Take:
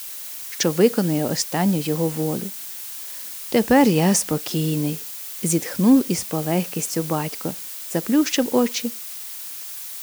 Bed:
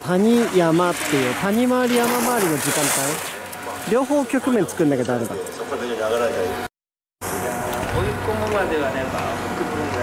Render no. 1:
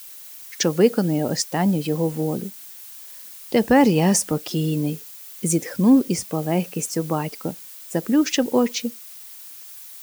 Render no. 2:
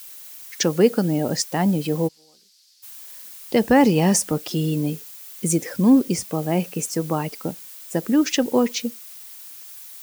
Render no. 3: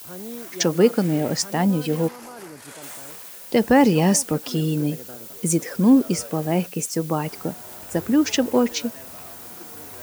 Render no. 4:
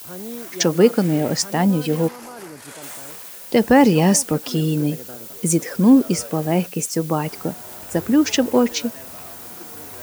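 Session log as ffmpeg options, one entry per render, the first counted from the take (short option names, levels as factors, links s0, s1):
-af "afftdn=nr=8:nf=-34"
-filter_complex "[0:a]asplit=3[s0][s1][s2];[s0]afade=t=out:st=2.07:d=0.02[s3];[s1]bandpass=f=4700:t=q:w=4.4,afade=t=in:st=2.07:d=0.02,afade=t=out:st=2.82:d=0.02[s4];[s2]afade=t=in:st=2.82:d=0.02[s5];[s3][s4][s5]amix=inputs=3:normalize=0"
-filter_complex "[1:a]volume=0.1[s0];[0:a][s0]amix=inputs=2:normalize=0"
-af "volume=1.33"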